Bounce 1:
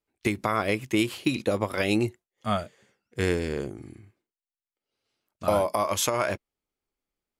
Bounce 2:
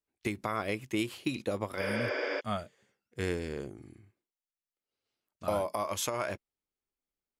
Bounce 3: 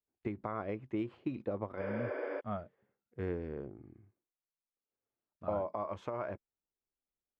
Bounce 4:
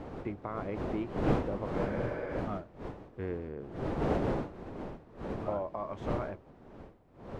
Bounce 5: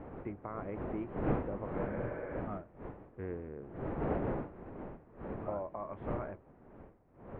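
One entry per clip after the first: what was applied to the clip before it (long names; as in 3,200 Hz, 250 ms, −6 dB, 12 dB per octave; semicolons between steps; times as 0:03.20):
healed spectral selection 0:01.84–0:02.38, 270–8,100 Hz before; level −7.5 dB
low-pass filter 1,200 Hz 12 dB per octave; level −3.5 dB
wind on the microphone 470 Hz −37 dBFS
low-pass filter 2,300 Hz 24 dB per octave; level −4 dB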